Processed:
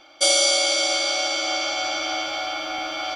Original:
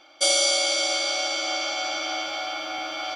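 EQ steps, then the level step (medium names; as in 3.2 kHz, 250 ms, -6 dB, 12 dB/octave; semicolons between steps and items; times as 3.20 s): bass shelf 110 Hz +10 dB; +2.5 dB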